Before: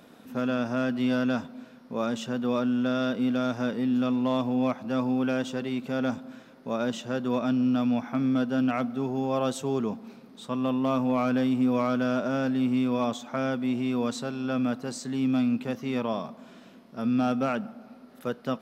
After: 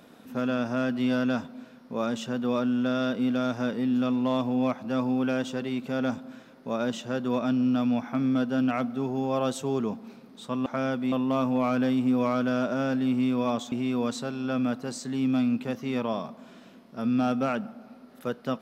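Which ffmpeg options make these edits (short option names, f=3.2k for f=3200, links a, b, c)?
-filter_complex "[0:a]asplit=4[a][b][c][d];[a]atrim=end=10.662[e];[b]atrim=start=13.258:end=13.722[f];[c]atrim=start=10.658:end=13.262[g];[d]atrim=start=13.718[h];[e][f]acrossfade=d=0.004:c1=hsin:c2=hsin[i];[i][g]acrossfade=d=0.004:c1=hsin:c2=hsin[j];[j][h]acrossfade=d=0.004:c1=hsin:c2=hsin"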